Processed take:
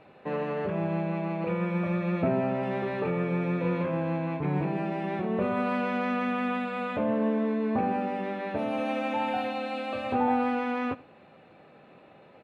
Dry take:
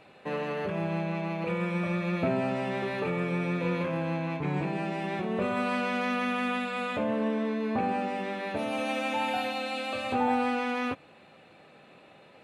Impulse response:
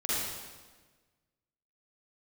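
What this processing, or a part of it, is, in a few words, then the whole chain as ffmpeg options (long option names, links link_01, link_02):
through cloth: -filter_complex "[0:a]asettb=1/sr,asplit=3[link_01][link_02][link_03];[link_01]atrim=end=2.224[link_04];[link_02]atrim=start=2.22:end=2.63,asetpts=PTS-STARTPTS,afade=type=in:duration=0.004:curve=qsin,afade=type=out:start_time=0.406:duration=0.004:curve=qsin,acrossover=split=3600[link_05][link_06];[link_06]acompressor=threshold=-58dB:ratio=4:attack=1:release=60[link_07];[link_05][link_07]amix=inputs=2:normalize=0[link_08];[link_03]atrim=start=2.626[link_09];[link_04][link_08]acrossfade=duration=0.004:curve1=hsin:curve2=qsin[link_10];[link_10][link_09]acrossfade=duration=0.004:curve1=qsin:curve2=hsin,highshelf=frequency=2900:gain=-14,equalizer=frequency=8100:width=1.2:gain=-3,aecho=1:1:82:0.0944,volume=2dB"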